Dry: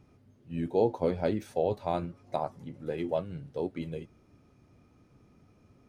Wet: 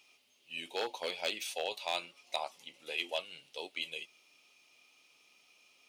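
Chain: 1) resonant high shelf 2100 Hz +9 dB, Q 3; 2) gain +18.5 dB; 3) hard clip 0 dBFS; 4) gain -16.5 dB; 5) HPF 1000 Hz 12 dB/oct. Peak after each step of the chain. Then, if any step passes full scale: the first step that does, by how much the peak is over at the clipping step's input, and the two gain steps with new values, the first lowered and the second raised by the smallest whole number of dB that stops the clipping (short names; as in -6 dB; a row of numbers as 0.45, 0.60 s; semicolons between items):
-13.5, +5.0, 0.0, -16.5, -18.0 dBFS; step 2, 5.0 dB; step 2 +13.5 dB, step 4 -11.5 dB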